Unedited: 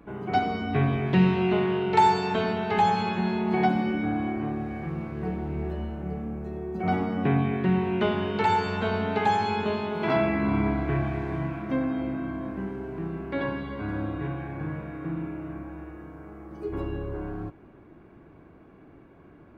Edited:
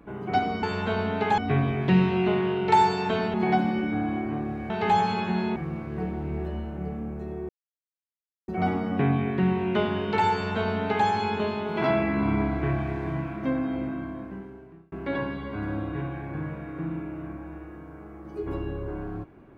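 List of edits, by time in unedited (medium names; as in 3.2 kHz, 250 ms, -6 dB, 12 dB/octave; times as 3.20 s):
2.59–3.45 s: move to 4.81 s
6.74 s: insert silence 0.99 s
8.58–9.33 s: copy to 0.63 s
12.12–13.18 s: fade out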